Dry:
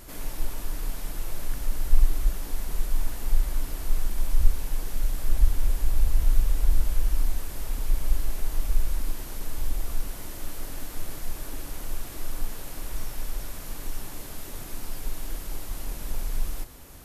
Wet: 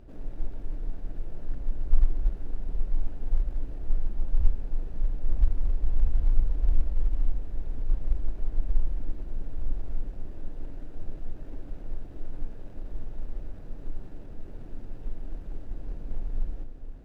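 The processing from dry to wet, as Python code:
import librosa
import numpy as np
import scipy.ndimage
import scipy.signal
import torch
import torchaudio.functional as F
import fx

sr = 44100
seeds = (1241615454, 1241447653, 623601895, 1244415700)

y = scipy.ndimage.median_filter(x, 41, mode='constant')
y = fx.lowpass(y, sr, hz=3700.0, slope=6)
y = fx.echo_diffused(y, sr, ms=524, feedback_pct=77, wet_db=-14)
y = y * librosa.db_to_amplitude(-2.0)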